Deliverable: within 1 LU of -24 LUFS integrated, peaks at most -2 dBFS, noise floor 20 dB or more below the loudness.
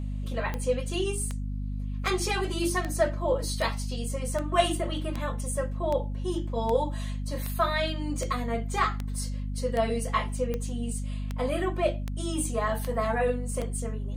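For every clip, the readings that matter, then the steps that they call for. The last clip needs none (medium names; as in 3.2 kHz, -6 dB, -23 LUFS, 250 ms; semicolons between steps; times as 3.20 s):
clicks found 18; hum 50 Hz; highest harmonic 250 Hz; hum level -29 dBFS; loudness -29.5 LUFS; peak level -9.5 dBFS; loudness target -24.0 LUFS
-> de-click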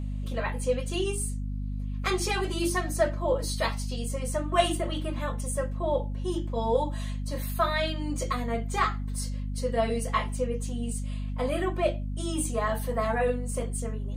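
clicks found 0; hum 50 Hz; highest harmonic 250 Hz; hum level -29 dBFS
-> hum notches 50/100/150/200/250 Hz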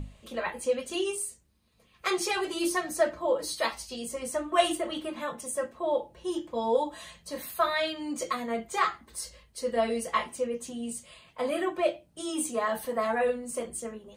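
hum not found; loudness -30.5 LUFS; peak level -10.0 dBFS; loudness target -24.0 LUFS
-> trim +6.5 dB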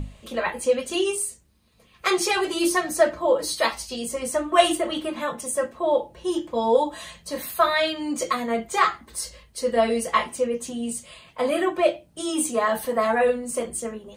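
loudness -24.0 LUFS; peak level -3.5 dBFS; noise floor -57 dBFS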